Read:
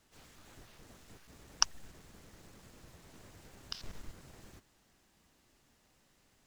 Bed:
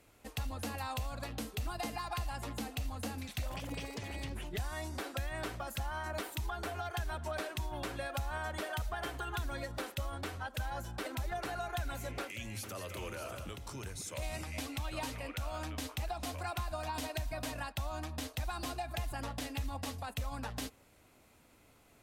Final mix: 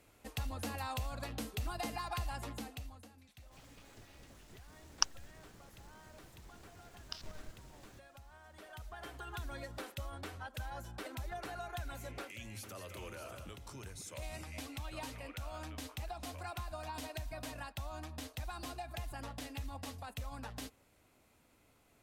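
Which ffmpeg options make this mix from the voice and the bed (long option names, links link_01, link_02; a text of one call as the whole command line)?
ffmpeg -i stem1.wav -i stem2.wav -filter_complex "[0:a]adelay=3400,volume=-2.5dB[link_01];[1:a]volume=13.5dB,afade=type=out:start_time=2.33:duration=0.75:silence=0.11885,afade=type=in:start_time=8.47:duration=1.01:silence=0.188365[link_02];[link_01][link_02]amix=inputs=2:normalize=0" out.wav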